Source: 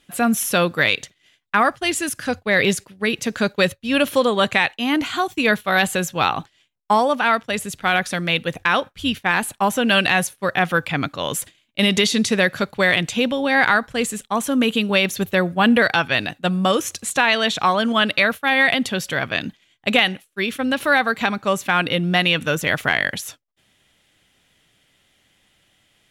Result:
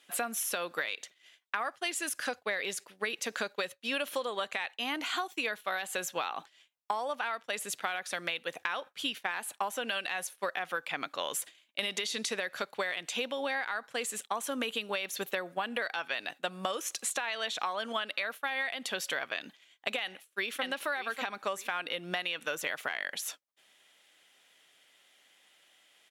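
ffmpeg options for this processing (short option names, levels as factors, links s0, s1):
-filter_complex "[0:a]asplit=2[s0][s1];[s1]afade=t=in:st=20.02:d=0.01,afade=t=out:st=20.65:d=0.01,aecho=0:1:590|1180|1770:0.595662|0.0893493|0.0134024[s2];[s0][s2]amix=inputs=2:normalize=0,highpass=490,alimiter=limit=0.422:level=0:latency=1:release=170,acompressor=threshold=0.0398:ratio=10,volume=0.794"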